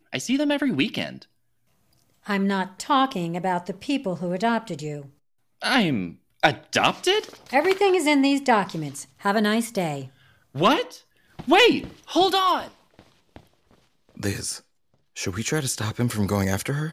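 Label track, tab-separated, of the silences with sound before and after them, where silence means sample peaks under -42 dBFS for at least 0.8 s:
1.230000	2.260000	silence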